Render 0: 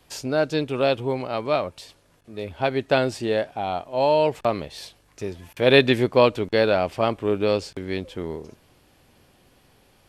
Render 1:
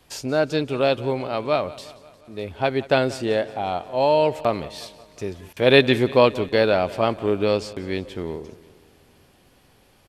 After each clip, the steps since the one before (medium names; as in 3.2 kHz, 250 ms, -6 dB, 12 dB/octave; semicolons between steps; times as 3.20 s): feedback delay 178 ms, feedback 59%, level -19 dB; trim +1 dB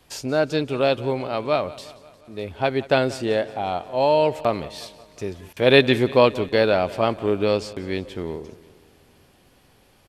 no audible change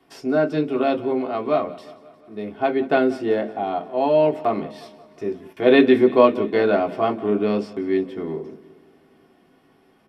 reverberation RT60 0.15 s, pre-delay 3 ms, DRR -0.5 dB; trim -12.5 dB